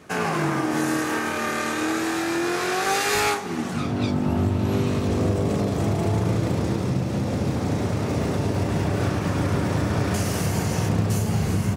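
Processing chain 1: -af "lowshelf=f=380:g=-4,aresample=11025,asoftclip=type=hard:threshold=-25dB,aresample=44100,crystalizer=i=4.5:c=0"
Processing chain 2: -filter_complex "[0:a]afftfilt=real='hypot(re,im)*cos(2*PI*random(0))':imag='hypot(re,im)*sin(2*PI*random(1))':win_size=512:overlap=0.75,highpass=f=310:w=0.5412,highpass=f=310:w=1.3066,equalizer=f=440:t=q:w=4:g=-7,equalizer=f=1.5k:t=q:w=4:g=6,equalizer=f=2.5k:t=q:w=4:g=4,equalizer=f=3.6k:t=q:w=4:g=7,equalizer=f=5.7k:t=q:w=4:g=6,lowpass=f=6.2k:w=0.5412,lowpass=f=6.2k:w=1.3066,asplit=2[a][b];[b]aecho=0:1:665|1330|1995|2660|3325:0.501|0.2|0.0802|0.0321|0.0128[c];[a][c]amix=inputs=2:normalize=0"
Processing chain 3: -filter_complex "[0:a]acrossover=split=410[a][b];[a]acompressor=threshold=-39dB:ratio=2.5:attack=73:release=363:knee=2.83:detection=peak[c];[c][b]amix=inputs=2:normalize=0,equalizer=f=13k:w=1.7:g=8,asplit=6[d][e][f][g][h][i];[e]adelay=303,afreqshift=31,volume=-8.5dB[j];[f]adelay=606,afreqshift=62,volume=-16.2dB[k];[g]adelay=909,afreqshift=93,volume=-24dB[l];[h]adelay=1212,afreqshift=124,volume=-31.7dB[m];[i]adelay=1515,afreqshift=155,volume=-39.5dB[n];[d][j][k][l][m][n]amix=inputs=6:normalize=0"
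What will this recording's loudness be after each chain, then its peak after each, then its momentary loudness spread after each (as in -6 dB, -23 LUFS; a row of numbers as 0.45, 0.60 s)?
-26.0, -30.5, -26.5 LUFS; -12.5, -14.0, -9.5 dBFS; 6, 9, 7 LU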